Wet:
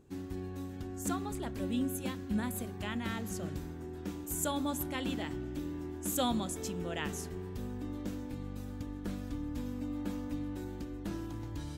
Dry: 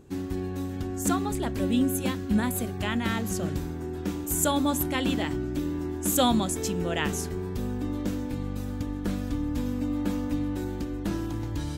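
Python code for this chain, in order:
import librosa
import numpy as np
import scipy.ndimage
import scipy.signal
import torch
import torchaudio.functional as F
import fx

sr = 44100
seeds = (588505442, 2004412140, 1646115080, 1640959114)

y = fx.rev_spring(x, sr, rt60_s=3.3, pass_ms=(33,), chirp_ms=70, drr_db=18.5)
y = F.gain(torch.from_numpy(y), -9.0).numpy()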